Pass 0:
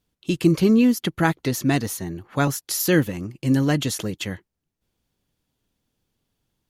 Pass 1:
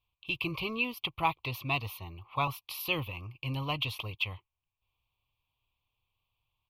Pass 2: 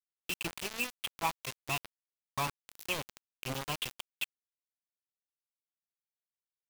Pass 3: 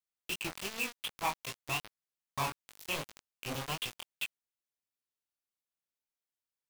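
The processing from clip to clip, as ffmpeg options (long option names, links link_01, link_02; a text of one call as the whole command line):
ffmpeg -i in.wav -af "firequalizer=gain_entry='entry(110,0);entry(190,-19);entry(1100,10);entry(1600,-28);entry(2400,11);entry(6900,-26);entry(14000,-1)':delay=0.05:min_phase=1,volume=-6dB" out.wav
ffmpeg -i in.wav -af "acrusher=bits=4:mix=0:aa=0.000001,volume=-4.5dB" out.wav
ffmpeg -i in.wav -af "flanger=delay=17.5:depth=6.2:speed=2.6,volume=2.5dB" out.wav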